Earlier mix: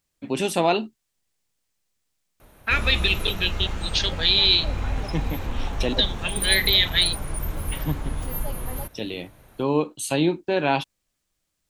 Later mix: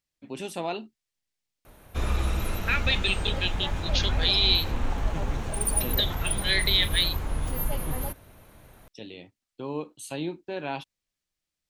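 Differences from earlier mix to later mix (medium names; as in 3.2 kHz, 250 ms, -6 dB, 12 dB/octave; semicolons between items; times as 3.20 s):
first voice -11.0 dB; second voice -4.5 dB; background: entry -0.75 s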